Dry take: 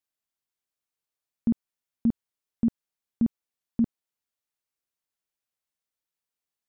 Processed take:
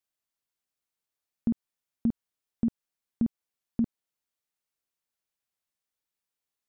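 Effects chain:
downward compressor 2.5 to 1, threshold −24 dBFS, peak gain reduction 4 dB

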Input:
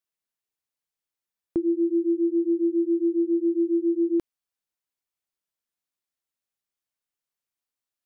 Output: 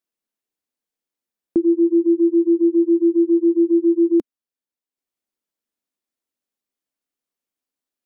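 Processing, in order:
transient designer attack 0 dB, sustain −6 dB
octave-band graphic EQ 125/250/500 Hz −6/+11/+4 dB

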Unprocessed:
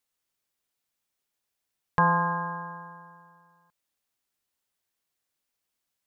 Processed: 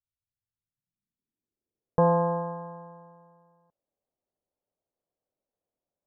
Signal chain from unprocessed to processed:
low-pass filter sweep 100 Hz → 590 Hz, 0:00.42–0:02.07
dynamic equaliser 390 Hz, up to +5 dB, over −35 dBFS, Q 0.74

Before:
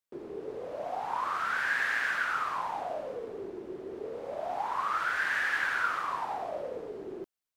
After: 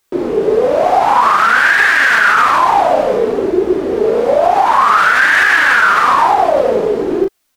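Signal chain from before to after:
flanger 1.1 Hz, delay 2.3 ms, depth 2.8 ms, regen +41%
double-tracking delay 36 ms −4 dB
boost into a limiter +29 dB
level −1 dB

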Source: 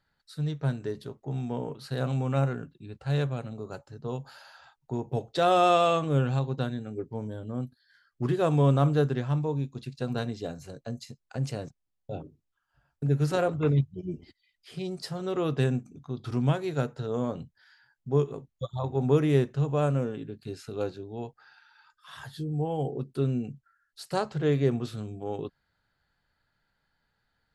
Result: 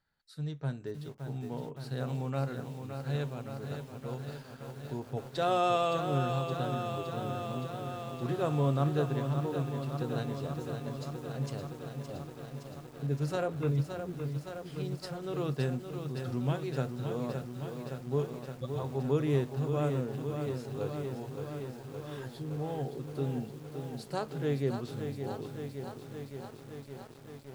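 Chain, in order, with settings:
feedback echo at a low word length 567 ms, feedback 80%, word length 8 bits, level −7 dB
level −6.5 dB

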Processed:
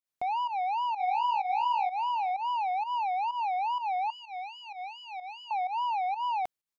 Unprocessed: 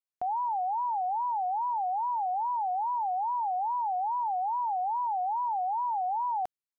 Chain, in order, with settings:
soft clipping −31.5 dBFS, distortion −17 dB
0:00.54–0:01.42: delay throw 450 ms, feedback 20%, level −3 dB
0:04.10–0:05.51: phaser with its sweep stopped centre 410 Hz, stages 4
fake sidechain pumping 127 BPM, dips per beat 1, −13 dB, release 143 ms
level +4.5 dB

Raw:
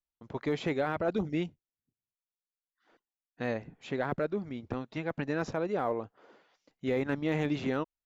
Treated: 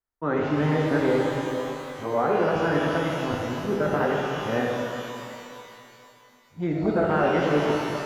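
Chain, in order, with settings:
played backwards from end to start
high shelf with overshoot 2,100 Hz −8.5 dB, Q 1.5
notch filter 2,800 Hz, Q 8
delay that swaps between a low-pass and a high-pass 182 ms, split 800 Hz, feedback 54%, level −13 dB
reverb with rising layers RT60 2.7 s, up +12 semitones, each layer −8 dB, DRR −1.5 dB
level +4.5 dB

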